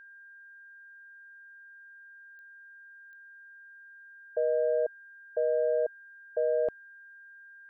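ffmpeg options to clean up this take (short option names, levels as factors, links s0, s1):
-af "adeclick=t=4,bandreject=f=1600:w=30"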